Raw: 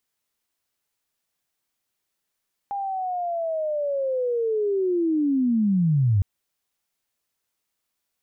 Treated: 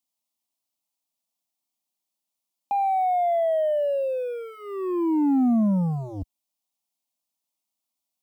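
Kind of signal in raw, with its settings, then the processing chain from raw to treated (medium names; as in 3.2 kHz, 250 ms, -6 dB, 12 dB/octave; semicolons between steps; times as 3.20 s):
sweep linear 810 Hz -> 92 Hz -25.5 dBFS -> -16 dBFS 3.51 s
high-pass 68 Hz 12 dB/octave; waveshaping leveller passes 2; static phaser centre 430 Hz, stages 6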